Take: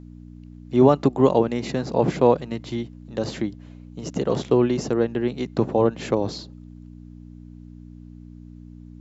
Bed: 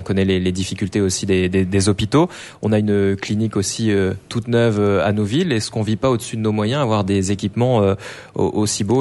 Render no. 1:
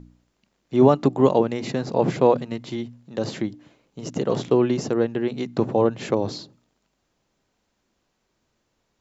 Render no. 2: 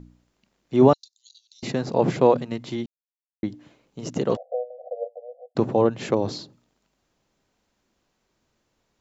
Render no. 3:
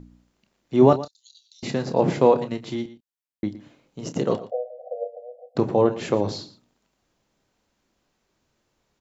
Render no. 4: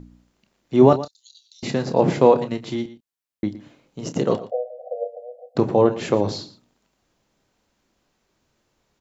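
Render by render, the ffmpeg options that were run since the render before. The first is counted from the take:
-af "bandreject=f=60:t=h:w=4,bandreject=f=120:t=h:w=4,bandreject=f=180:t=h:w=4,bandreject=f=240:t=h:w=4,bandreject=f=300:t=h:w=4"
-filter_complex "[0:a]asettb=1/sr,asplit=3[s0][s1][s2];[s0]atrim=end=0.934[s3];[s1]atrim=start=0.93:end=1.63,asetpts=PTS-STARTPTS,afade=t=in:d=0.004:c=qsin,afade=t=out:st=0.696:d=0.004:c=qsin,asuperpass=centerf=5200:order=8:qfactor=1.8[s4];[s2]atrim=start=1.626[s5];[s3][s4]acrossfade=d=0.004:c1=hsin:c2=qsin[s6];[s6][s5]acrossfade=d=0.004:c1=qsin:c2=hsin,asplit=3[s7][s8][s9];[s7]afade=t=out:st=4.35:d=0.02[s10];[s8]asuperpass=centerf=610:order=20:qfactor=2.1,afade=t=in:st=4.35:d=0.02,afade=t=out:st=5.55:d=0.02[s11];[s9]afade=t=in:st=5.55:d=0.02[s12];[s10][s11][s12]amix=inputs=3:normalize=0,asplit=3[s13][s14][s15];[s13]atrim=end=2.86,asetpts=PTS-STARTPTS,afade=t=out:st=2.856:d=0.004:c=hsin[s16];[s14]atrim=start=2.86:end=3.43,asetpts=PTS-STARTPTS,volume=0[s17];[s15]atrim=start=3.43,asetpts=PTS-STARTPTS,afade=t=in:d=0.004:c=hsin[s18];[s16][s17][s18]concat=n=3:v=0:a=1"
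-filter_complex "[0:a]asplit=2[s0][s1];[s1]adelay=29,volume=0.282[s2];[s0][s2]amix=inputs=2:normalize=0,aecho=1:1:117:0.158"
-af "volume=1.33,alimiter=limit=0.794:level=0:latency=1"

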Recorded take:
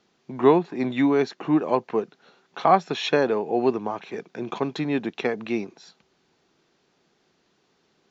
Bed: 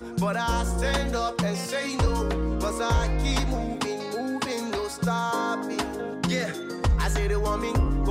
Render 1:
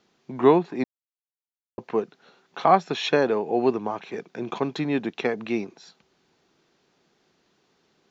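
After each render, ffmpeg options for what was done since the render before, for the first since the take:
-filter_complex "[0:a]asplit=3[s0][s1][s2];[s0]atrim=end=0.84,asetpts=PTS-STARTPTS,afade=t=out:st=0.836:d=0.004:c=hsin[s3];[s1]atrim=start=0.84:end=1.78,asetpts=PTS-STARTPTS,volume=0[s4];[s2]atrim=start=1.78,asetpts=PTS-STARTPTS,afade=t=in:d=0.004:c=hsin[s5];[s3][s4][s5]concat=n=3:v=0:a=1"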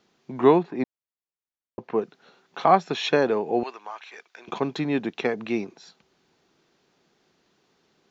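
-filter_complex "[0:a]asettb=1/sr,asplit=3[s0][s1][s2];[s0]atrim=end=0.634[s3];[s1]atrim=start=0.63:end=2.02,asetpts=PTS-STARTPTS,afade=t=in:d=0.004:c=qsin,afade=t=out:st=1.386:d=0.004:c=qsin,lowpass=f=2500:p=1[s4];[s2]atrim=start=2.016[s5];[s3][s4]acrossfade=d=0.004:c1=hsin:c2=qsin[s6];[s6][s5]acrossfade=d=0.004:c1=qsin:c2=hsin,asettb=1/sr,asplit=3[s7][s8][s9];[s7]atrim=end=3.634[s10];[s8]atrim=start=3.63:end=4.48,asetpts=PTS-STARTPTS,afade=t=in:d=0.004:c=qsin,afade=t=out:st=0.846:d=0.004:c=qsin,highpass=1200[s11];[s9]atrim=start=4.476[s12];[s10][s11]acrossfade=d=0.004:c1=hsin:c2=qsin[s13];[s13][s12]acrossfade=d=0.004:c1=qsin:c2=hsin"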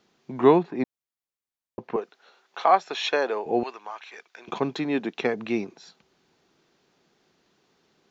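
-filter_complex "[0:a]asettb=1/sr,asplit=3[s0][s1][s2];[s0]atrim=end=1.964[s3];[s1]atrim=start=1.96:end=3.46,asetpts=PTS-STARTPTS,afade=t=in:d=0.004:c=qsin,afade=t=out:st=1.496:d=0.004:c=qsin,highpass=520[s4];[s2]atrim=start=3.456[s5];[s3][s4]acrossfade=d=0.004:c1=hsin:c2=qsin[s6];[s6][s5]acrossfade=d=0.004:c1=qsin:c2=hsin,asettb=1/sr,asplit=3[s7][s8][s9];[s7]atrim=end=4.754[s10];[s8]atrim=start=4.75:end=5.18,asetpts=PTS-STARTPTS,afade=t=in:d=0.004:c=qsin,afade=t=out:st=0.426:d=0.004:c=qsin,highpass=200[s11];[s9]atrim=start=5.176[s12];[s10][s11]acrossfade=d=0.004:c1=hsin:c2=qsin[s13];[s13][s12]acrossfade=d=0.004:c1=qsin:c2=hsin"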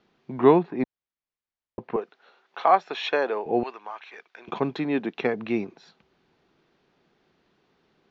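-af "lowpass=3500,lowshelf=f=74:g=7.5"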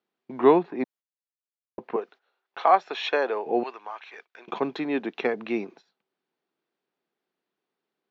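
-af "highpass=250,agate=range=0.141:threshold=0.00398:ratio=16:detection=peak"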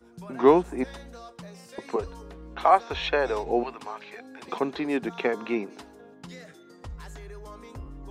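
-filter_complex "[1:a]volume=0.133[s0];[0:a][s0]amix=inputs=2:normalize=0"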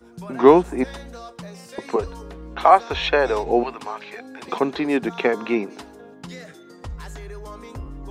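-af "volume=2,alimiter=limit=0.891:level=0:latency=1"

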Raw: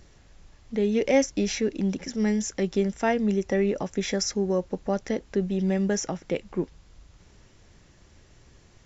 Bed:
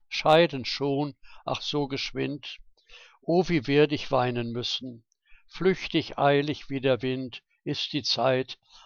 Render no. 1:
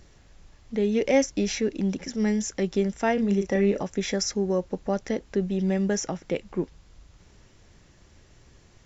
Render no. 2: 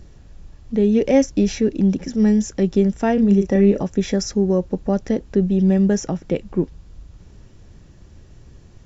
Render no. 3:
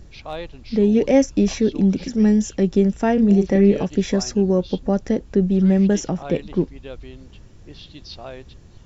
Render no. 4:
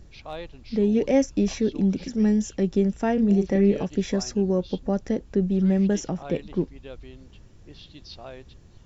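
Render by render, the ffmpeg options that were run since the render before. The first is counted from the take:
-filter_complex "[0:a]asettb=1/sr,asplit=3[s0][s1][s2];[s0]atrim=end=3.144[s3];[s1]atrim=start=3.14:end=3.83,asetpts=PTS-STARTPTS,afade=t=in:d=0.004:c=qsin,afade=t=out:st=0.686:d=0.004:c=qsin,asplit=2[s4][s5];[s5]adelay=35,volume=0.473[s6];[s4][s6]amix=inputs=2:normalize=0,atrim=end_sample=30429[s7];[s2]atrim=start=3.826[s8];[s3][s7]acrossfade=d=0.004:c1=hsin:c2=qsin[s9];[s9][s8]acrossfade=d=0.004:c1=qsin:c2=hsin"
-af "lowshelf=f=440:g=11.5,bandreject=f=2100:w=15"
-filter_complex "[1:a]volume=0.237[s0];[0:a][s0]amix=inputs=2:normalize=0"
-af "volume=0.562"

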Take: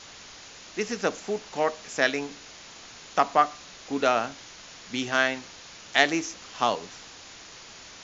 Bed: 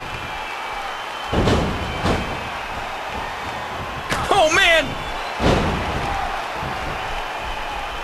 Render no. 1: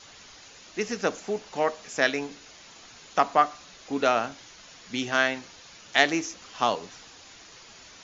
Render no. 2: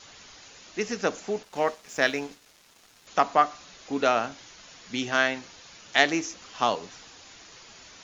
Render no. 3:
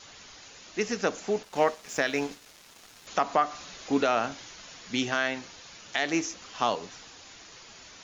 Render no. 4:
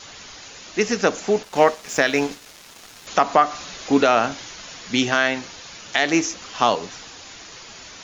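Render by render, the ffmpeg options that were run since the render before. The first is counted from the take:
-af "afftdn=nr=6:nf=-47"
-filter_complex "[0:a]asettb=1/sr,asplit=3[s0][s1][s2];[s0]atrim=end=1.434[s3];[s1]atrim=start=1.43:end=3.07,asetpts=PTS-STARTPTS,afade=t=in:d=0.004:c=qsin,afade=t=out:st=1.636:d=0.004:c=qsin,aeval=exprs='sgn(val(0))*max(abs(val(0))-0.00355,0)':c=same[s4];[s2]atrim=start=3.066[s5];[s3][s4]acrossfade=d=0.004:c1=hsin:c2=qsin[s6];[s6][s5]acrossfade=d=0.004:c1=qsin:c2=hsin"
-af "dynaudnorm=f=300:g=11:m=3.76,alimiter=limit=0.251:level=0:latency=1:release=163"
-af "volume=2.66"

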